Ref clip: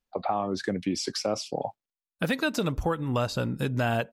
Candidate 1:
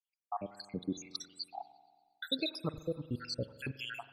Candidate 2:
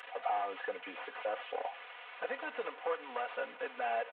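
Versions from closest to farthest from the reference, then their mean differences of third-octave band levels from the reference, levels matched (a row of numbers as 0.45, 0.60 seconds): 1, 2; 11.5, 15.0 decibels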